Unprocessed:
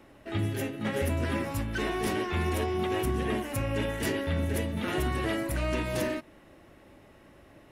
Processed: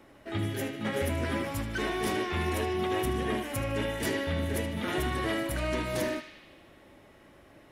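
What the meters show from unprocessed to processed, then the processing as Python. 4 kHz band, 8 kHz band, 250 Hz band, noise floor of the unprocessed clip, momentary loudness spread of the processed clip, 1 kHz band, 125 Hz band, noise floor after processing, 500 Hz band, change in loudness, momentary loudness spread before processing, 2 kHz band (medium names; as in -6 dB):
+1.5 dB, +0.5 dB, -1.0 dB, -55 dBFS, 4 LU, +0.5 dB, -2.5 dB, -56 dBFS, -0.5 dB, -0.5 dB, 3 LU, +0.5 dB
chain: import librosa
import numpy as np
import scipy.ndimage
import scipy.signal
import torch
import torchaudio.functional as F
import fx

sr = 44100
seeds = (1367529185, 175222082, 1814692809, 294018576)

p1 = fx.low_shelf(x, sr, hz=190.0, db=-3.5)
p2 = fx.notch(p1, sr, hz=2700.0, q=20.0)
y = p2 + fx.echo_banded(p2, sr, ms=76, feedback_pct=75, hz=3000.0, wet_db=-7.0, dry=0)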